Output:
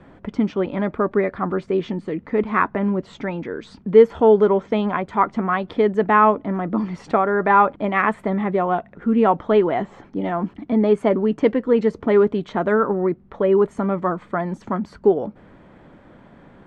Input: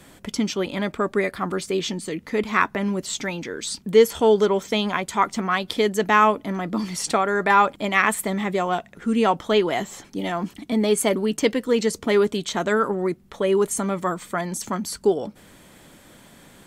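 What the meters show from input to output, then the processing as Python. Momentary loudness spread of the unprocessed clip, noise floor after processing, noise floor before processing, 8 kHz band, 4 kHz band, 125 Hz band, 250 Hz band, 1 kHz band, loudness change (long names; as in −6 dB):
10 LU, −50 dBFS, −51 dBFS, below −25 dB, −12.0 dB, +3.5 dB, +3.5 dB, +2.5 dB, +2.5 dB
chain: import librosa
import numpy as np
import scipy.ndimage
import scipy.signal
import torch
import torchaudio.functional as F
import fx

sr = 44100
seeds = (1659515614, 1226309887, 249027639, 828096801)

y = fx.block_float(x, sr, bits=7)
y = scipy.signal.sosfilt(scipy.signal.butter(2, 1400.0, 'lowpass', fs=sr, output='sos'), y)
y = y * 10.0 ** (3.5 / 20.0)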